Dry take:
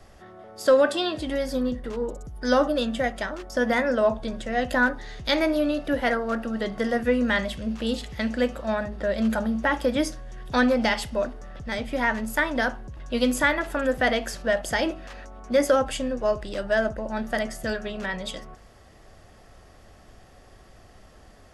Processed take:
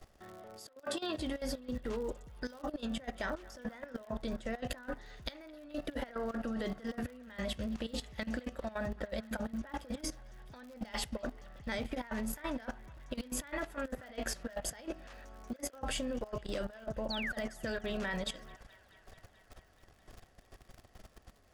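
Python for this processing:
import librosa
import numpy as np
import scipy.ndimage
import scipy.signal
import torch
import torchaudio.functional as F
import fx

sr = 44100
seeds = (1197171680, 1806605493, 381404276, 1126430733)

p1 = fx.spec_paint(x, sr, seeds[0], shape='fall', start_s=17.1, length_s=0.22, low_hz=1400.0, high_hz=4700.0, level_db=-30.0)
p2 = fx.over_compress(p1, sr, threshold_db=-28.0, ratio=-0.5)
p3 = fx.dmg_crackle(p2, sr, seeds[1], per_s=120.0, level_db=-37.0)
p4 = fx.level_steps(p3, sr, step_db=15)
p5 = p4 + fx.echo_wet_bandpass(p4, sr, ms=216, feedback_pct=79, hz=1600.0, wet_db=-21.0, dry=0)
y = p5 * 10.0 ** (-6.0 / 20.0)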